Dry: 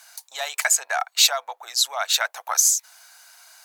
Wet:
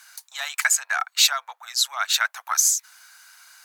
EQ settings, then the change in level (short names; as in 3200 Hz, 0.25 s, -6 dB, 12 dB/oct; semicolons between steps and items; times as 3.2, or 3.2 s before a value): resonant high-pass 1300 Hz, resonance Q 1.6; -1.5 dB